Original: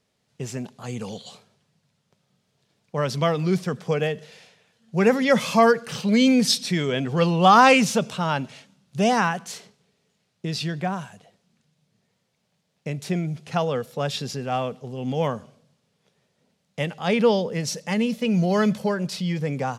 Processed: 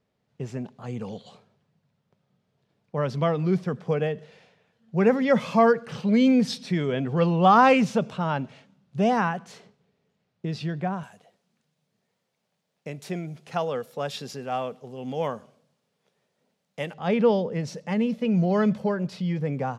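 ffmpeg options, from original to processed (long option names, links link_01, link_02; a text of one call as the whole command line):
ffmpeg -i in.wav -filter_complex "[0:a]asettb=1/sr,asplit=3[link_01][link_02][link_03];[link_01]atrim=end=11.034[link_04];[link_02]atrim=start=11.03:end=16.94,asetpts=PTS-STARTPTS,afade=type=in:duration=0.004:curve=qsin,afade=type=out:start_time=5.906:duration=0.004:curve=qsin,aemphasis=mode=production:type=bsi[link_05];[link_03]atrim=start=16.936[link_06];[link_04][link_05]acrossfade=duration=0.004:curve1=hsin:curve2=qsin[link_07];[link_07][link_06]acrossfade=duration=0.004:curve1=qsin:curve2=hsin,lowpass=frequency=1400:poles=1,volume=-1dB" out.wav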